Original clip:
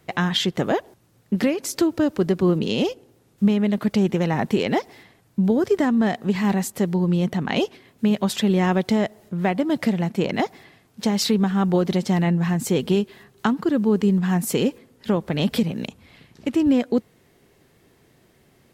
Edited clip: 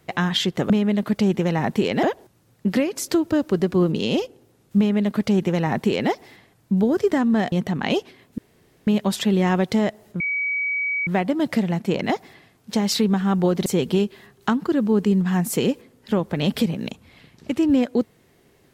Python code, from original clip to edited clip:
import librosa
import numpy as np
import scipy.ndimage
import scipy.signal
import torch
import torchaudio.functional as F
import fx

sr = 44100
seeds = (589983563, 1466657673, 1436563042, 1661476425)

y = fx.edit(x, sr, fx.duplicate(start_s=3.45, length_s=1.33, to_s=0.7),
    fx.cut(start_s=6.19, length_s=0.99),
    fx.insert_room_tone(at_s=8.04, length_s=0.49),
    fx.insert_tone(at_s=9.37, length_s=0.87, hz=2270.0, db=-21.0),
    fx.cut(start_s=11.96, length_s=0.67), tone=tone)